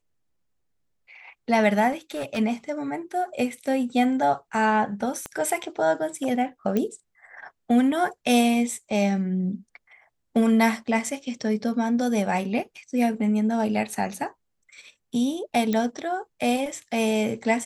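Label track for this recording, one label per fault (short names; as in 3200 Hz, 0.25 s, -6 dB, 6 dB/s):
1.910000	2.390000	clipped -25.5 dBFS
5.260000	5.260000	pop -18 dBFS
6.770000	6.770000	pop -13 dBFS
15.730000	15.730000	pop -13 dBFS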